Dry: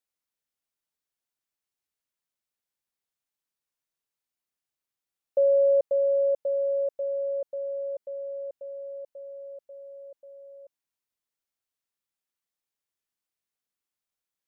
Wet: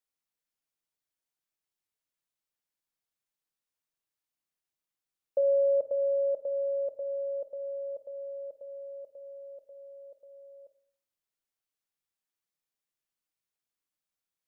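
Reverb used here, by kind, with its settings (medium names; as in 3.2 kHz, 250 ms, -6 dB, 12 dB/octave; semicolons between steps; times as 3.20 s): simulated room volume 560 m³, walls furnished, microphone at 0.58 m; trim -2.5 dB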